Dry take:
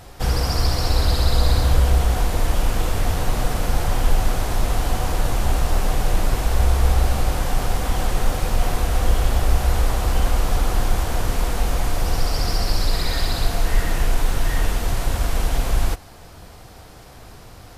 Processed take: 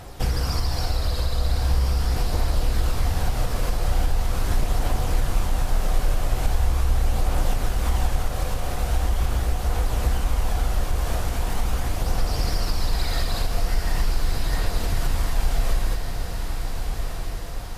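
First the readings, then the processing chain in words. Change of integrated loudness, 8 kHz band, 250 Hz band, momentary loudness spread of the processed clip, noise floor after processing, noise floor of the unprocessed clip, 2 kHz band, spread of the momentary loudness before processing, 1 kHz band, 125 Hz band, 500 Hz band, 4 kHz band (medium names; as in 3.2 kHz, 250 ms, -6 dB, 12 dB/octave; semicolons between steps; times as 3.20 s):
-3.5 dB, -4.5 dB, -4.5 dB, 4 LU, -29 dBFS, -42 dBFS, -4.5 dB, 5 LU, -4.5 dB, -3.0 dB, -5.0 dB, -4.5 dB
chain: compression, threshold -21 dBFS, peak gain reduction 11.5 dB; phaser 0.41 Hz, delay 1.9 ms, feedback 26%; echo that smears into a reverb 1401 ms, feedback 54%, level -5.5 dB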